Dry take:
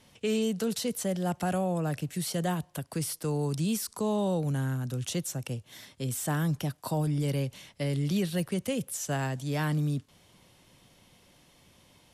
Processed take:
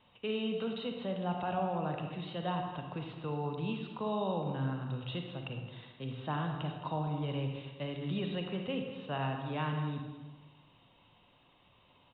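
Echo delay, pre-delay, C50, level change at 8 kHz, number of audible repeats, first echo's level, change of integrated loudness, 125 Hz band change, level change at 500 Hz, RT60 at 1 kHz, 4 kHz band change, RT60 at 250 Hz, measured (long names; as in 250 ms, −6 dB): 216 ms, 39 ms, 3.5 dB, below −40 dB, 1, −12.5 dB, −6.0 dB, −7.0 dB, −5.0 dB, 1.2 s, −4.0 dB, 1.3 s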